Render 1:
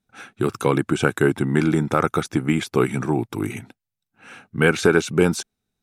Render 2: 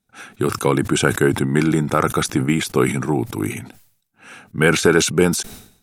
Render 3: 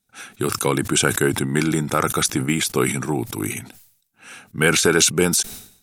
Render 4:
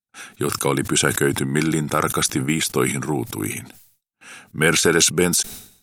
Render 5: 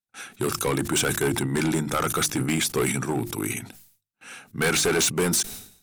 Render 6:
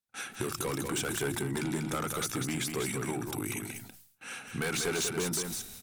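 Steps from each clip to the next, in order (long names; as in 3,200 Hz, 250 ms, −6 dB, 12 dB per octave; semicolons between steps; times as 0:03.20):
parametric band 12,000 Hz +6.5 dB 1.5 octaves; level that may fall only so fast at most 94 dB per second; level +1.5 dB
high-shelf EQ 2,700 Hz +9.5 dB; level −3.5 dB
noise gate with hold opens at −43 dBFS
mains-hum notches 50/100/150/200/250/300/350 Hz; hard clipping −17 dBFS, distortion −8 dB; level −1.5 dB
downward compressor 4 to 1, threshold −33 dBFS, peak gain reduction 10.5 dB; single-tap delay 193 ms −5.5 dB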